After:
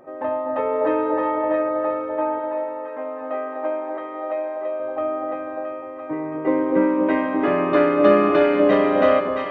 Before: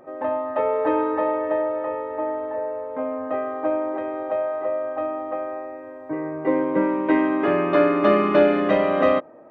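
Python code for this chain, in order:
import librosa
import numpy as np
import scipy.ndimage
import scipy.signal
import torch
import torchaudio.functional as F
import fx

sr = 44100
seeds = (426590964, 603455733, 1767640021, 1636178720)

y = fx.highpass(x, sr, hz=650.0, slope=6, at=(2.39, 4.8))
y = fx.echo_split(y, sr, split_hz=870.0, low_ms=248, high_ms=671, feedback_pct=52, wet_db=-5.0)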